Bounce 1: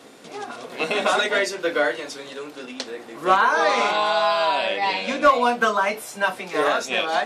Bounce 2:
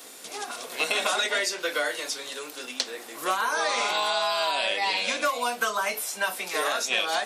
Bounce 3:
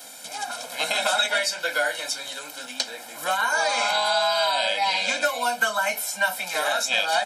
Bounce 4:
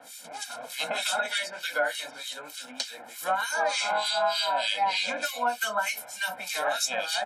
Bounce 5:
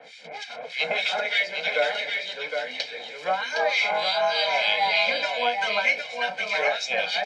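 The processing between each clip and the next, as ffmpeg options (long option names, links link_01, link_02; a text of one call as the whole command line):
ffmpeg -i in.wav -filter_complex "[0:a]acrossover=split=450|6200[link_01][link_02][link_03];[link_01]acompressor=threshold=-32dB:ratio=4[link_04];[link_02]acompressor=threshold=-23dB:ratio=4[link_05];[link_03]acompressor=threshold=-49dB:ratio=4[link_06];[link_04][link_05][link_06]amix=inputs=3:normalize=0,aemphasis=mode=production:type=riaa,volume=-2dB" out.wav
ffmpeg -i in.wav -af "aecho=1:1:1.3:0.99" out.wav
ffmpeg -i in.wav -filter_complex "[0:a]acrossover=split=1800[link_01][link_02];[link_01]aeval=exprs='val(0)*(1-1/2+1/2*cos(2*PI*3.3*n/s))':channel_layout=same[link_03];[link_02]aeval=exprs='val(0)*(1-1/2-1/2*cos(2*PI*3.3*n/s))':channel_layout=same[link_04];[link_03][link_04]amix=inputs=2:normalize=0" out.wav
ffmpeg -i in.wav -filter_complex "[0:a]highpass=150,equalizer=frequency=160:width_type=q:width=4:gain=7,equalizer=frequency=270:width_type=q:width=4:gain=-10,equalizer=frequency=440:width_type=q:width=4:gain=10,equalizer=frequency=960:width_type=q:width=4:gain=-6,equalizer=frequency=1400:width_type=q:width=4:gain=-8,equalizer=frequency=2100:width_type=q:width=4:gain=10,lowpass=frequency=4600:width=0.5412,lowpass=frequency=4600:width=1.3066,asplit=2[link_01][link_02];[link_02]aecho=0:1:762:0.531[link_03];[link_01][link_03]amix=inputs=2:normalize=0,volume=3dB" out.wav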